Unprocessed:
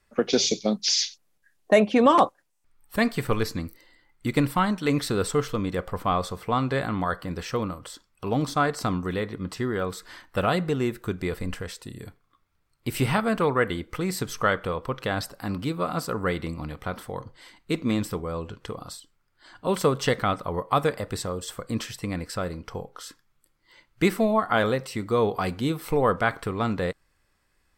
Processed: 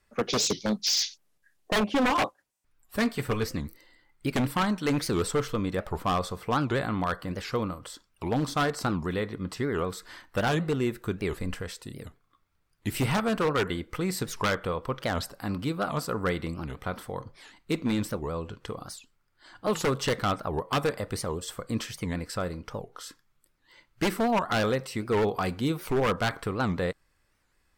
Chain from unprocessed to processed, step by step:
0:01.80–0:03.52: notch comb filter 170 Hz
wave folding −17 dBFS
wow of a warped record 78 rpm, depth 250 cents
level −1.5 dB

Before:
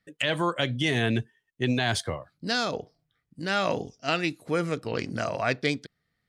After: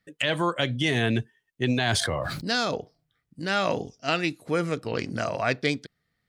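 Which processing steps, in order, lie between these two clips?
0:01.87–0:02.75: level that may fall only so fast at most 24 dB per second
level +1 dB

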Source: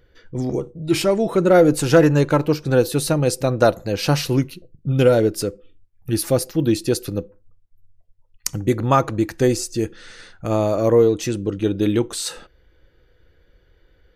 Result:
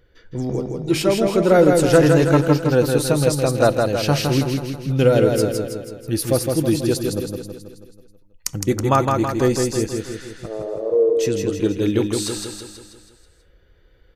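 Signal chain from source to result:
0:10.46–0:11.17: four-pole ladder band-pass 470 Hz, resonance 70%
repeating echo 162 ms, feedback 54%, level −4 dB
level −1 dB

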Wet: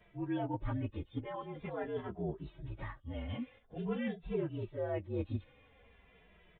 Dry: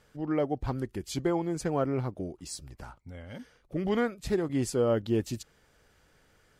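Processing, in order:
partials spread apart or drawn together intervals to 117%
reversed playback
downward compressor 6 to 1, threshold −40 dBFS, peak gain reduction 16.5 dB
reversed playback
downsampling to 8,000 Hz
barber-pole flanger 2.6 ms −0.46 Hz
level +8.5 dB

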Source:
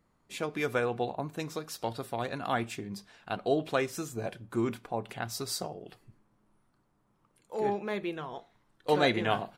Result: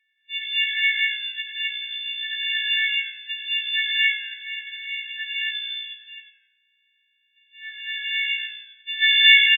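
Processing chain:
every partial snapped to a pitch grid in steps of 4 semitones
linear-phase brick-wall band-pass 1,700–3,900 Hz
on a send: echo with shifted repeats 89 ms, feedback 32%, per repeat −59 Hz, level −10 dB
on the sum: reverb whose tail is shaped and stops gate 290 ms rising, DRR −4 dB
level +6.5 dB

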